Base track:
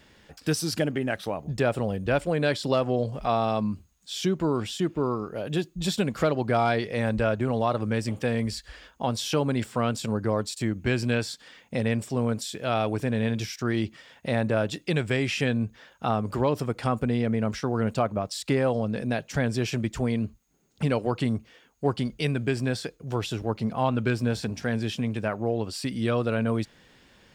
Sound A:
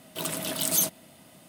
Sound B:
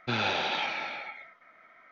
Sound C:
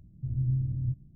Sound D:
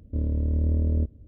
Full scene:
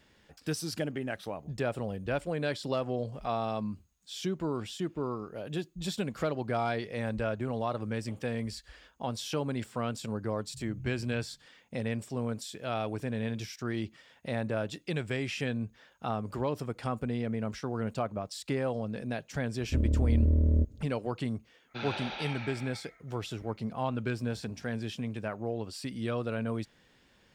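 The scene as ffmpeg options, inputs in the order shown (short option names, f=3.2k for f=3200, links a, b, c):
-filter_complex "[0:a]volume=-7.5dB[a];[3:a]atrim=end=1.15,asetpts=PTS-STARTPTS,volume=-16.5dB,afade=t=in:d=0.004:c=hsin,afade=t=out:st=1.146:d=0.004:c=hsin,adelay=10310[b];[4:a]atrim=end=1.27,asetpts=PTS-STARTPTS,volume=-1dB,afade=t=in:d=0.004:c=hsin,afade=t=out:st=1.266:d=0.004:c=hsin,adelay=19590[c];[2:a]atrim=end=1.91,asetpts=PTS-STARTPTS,volume=-9.5dB,afade=t=in:d=0.05,afade=t=out:st=1.86:d=0.05,adelay=21670[d];[a][b][c][d]amix=inputs=4:normalize=0"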